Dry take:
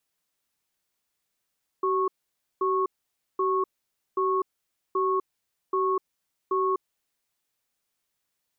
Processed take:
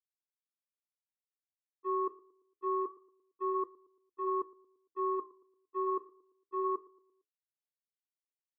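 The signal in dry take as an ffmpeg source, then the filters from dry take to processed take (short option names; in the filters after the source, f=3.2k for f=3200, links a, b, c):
-f lavfi -i "aevalsrc='0.0596*(sin(2*PI*380*t)+sin(2*PI*1100*t))*clip(min(mod(t,0.78),0.25-mod(t,0.78))/0.005,0,1)':d=5.4:s=44100"
-filter_complex "[0:a]agate=range=-36dB:threshold=-24dB:ratio=16:detection=peak,flanger=delay=5.8:depth=8:regen=-74:speed=0.25:shape=triangular,asplit=2[a][b];[b]adelay=114,lowpass=f=1.1k:p=1,volume=-21dB,asplit=2[c][d];[d]adelay=114,lowpass=f=1.1k:p=1,volume=0.5,asplit=2[e][f];[f]adelay=114,lowpass=f=1.1k:p=1,volume=0.5,asplit=2[g][h];[h]adelay=114,lowpass=f=1.1k:p=1,volume=0.5[i];[a][c][e][g][i]amix=inputs=5:normalize=0"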